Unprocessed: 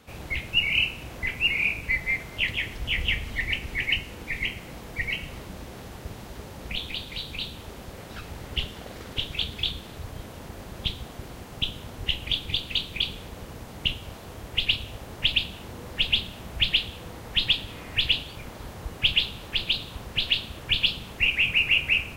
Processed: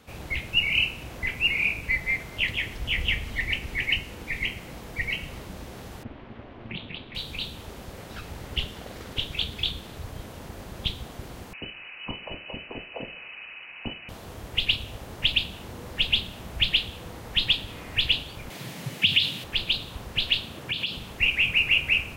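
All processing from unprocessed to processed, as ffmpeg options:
-filter_complex "[0:a]asettb=1/sr,asplit=3[a][b][c];[a]atrim=end=6.034[d];[b]atrim=start=6.03:end=7.15,asetpts=PTS-STARTPTS,afade=t=in:d=0.004:c=qsin,afade=t=out:st=1.116:d=0.004:c=qsin,lowpass=f=3k:w=0.5412,lowpass=f=3k:w=1.3066,aeval=exprs='val(0)*sin(2*PI*170*n/s)':c=same[e];[c]atrim=start=7.146[f];[d][e]acrossfade=d=0.004:c1=hsin:c2=qsin[g];[g][f]acrossfade=d=0.004:c1=qsin:c2=hsin,asettb=1/sr,asplit=3[h][i][j];[h]atrim=end=11.534[k];[i]atrim=start=11.53:end=14.09,asetpts=PTS-STARTPTS,afade=t=in:d=0.004:c=qsin,afade=t=out:st=2.556:d=0.004:c=qsin,lowshelf=f=300:t=q:w=3:g=-8.5,lowpass=f=2.6k:t=q:w=0.5098,lowpass=f=2.6k:t=q:w=0.6013,lowpass=f=2.6k:t=q:w=0.9,lowpass=f=2.6k:t=q:w=2.563,afreqshift=-3000[l];[j]atrim=start=14.086[m];[k][l]acrossfade=d=0.004:c1=hsin:c2=qsin[n];[n][m]acrossfade=d=0.004:c1=qsin:c2=hsin,asettb=1/sr,asplit=3[o][p][q];[o]atrim=end=18.504[r];[p]atrim=start=18.5:end=19.44,asetpts=PTS-STARTPTS,afade=t=in:d=0.004:c=qsin,afade=t=out:st=0.936:d=0.004:c=qsin,highshelf=f=1.6k:t=q:w=1.5:g=6.5,acompressor=threshold=-16dB:ratio=4:attack=3.2:release=140:knee=1:detection=peak,afreqshift=81[s];[q]atrim=start=19.436[t];[r][s]acrossfade=d=0.004:c1=hsin:c2=qsin[u];[u][t]acrossfade=d=0.004:c1=qsin:c2=hsin,asettb=1/sr,asplit=3[v][w][x];[v]atrim=end=20.464[y];[w]atrim=start=20.46:end=20.96,asetpts=PTS-STARTPTS,afade=t=in:d=0.004:c=qsin,afade=t=out:st=0.496:d=0.004:c=qsin,highpass=150,lowshelf=f=320:g=6,acompressor=threshold=-26dB:ratio=3:attack=3.2:release=140:knee=1:detection=peak[z];[x]atrim=start=20.956[aa];[y][z]acrossfade=d=0.004:c1=hsin:c2=qsin[ab];[ab][aa]acrossfade=d=0.004:c1=qsin:c2=hsin"

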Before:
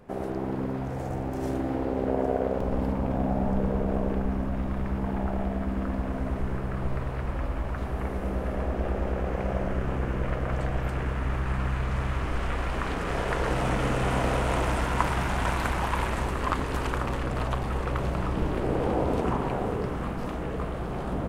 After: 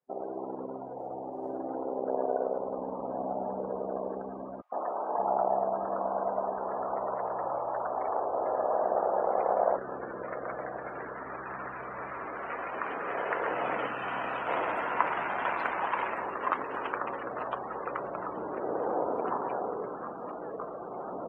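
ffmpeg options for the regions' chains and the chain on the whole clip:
-filter_complex "[0:a]asettb=1/sr,asplit=3[a][b][c];[a]atrim=end=4.614[d];[b]atrim=start=4.61:end=9.77,asetpts=PTS-STARTPTS,afade=t=in:d=0.004:c=qsin,afade=t=out:st=5.156:d=0.004:c=qsin,equalizer=f=780:w=1:g=12,acrossover=split=250|1500[e][f][g];[f]adelay=110[h];[e]adelay=580[i];[i][h][g]amix=inputs=3:normalize=0,atrim=end_sample=227556[j];[c]atrim=start=9.766[k];[d][j]acrossfade=d=0.004:c1=hsin:c2=qsin[l];[l][k]acrossfade=d=0.004:c1=qsin:c2=hsin,asettb=1/sr,asplit=3[m][n][o];[m]atrim=end=13.864[p];[n]atrim=start=13.86:end=14.47,asetpts=PTS-STARTPTS,afade=t=in:d=0.004:c=qsin,afade=t=out:st=0.606:d=0.004:c=qsin,equalizer=f=490:t=o:w=1.3:g=-8,bandreject=f=2.1k:w=16[q];[o]atrim=start=14.466[r];[p][q]acrossfade=d=0.004:c1=hsin:c2=qsin[s];[s][r]acrossfade=d=0.004:c1=qsin:c2=hsin,afftdn=nr=34:nf=-36,highpass=480"

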